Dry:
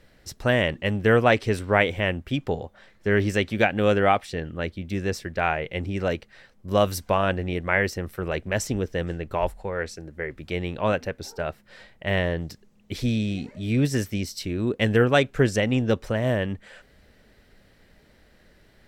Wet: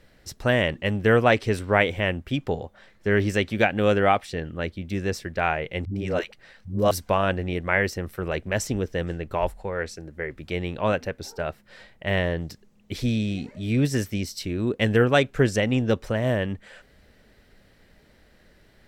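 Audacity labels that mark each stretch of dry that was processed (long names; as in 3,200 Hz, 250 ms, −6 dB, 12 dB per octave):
5.850000	6.910000	all-pass dispersion highs, late by 108 ms, half as late at 340 Hz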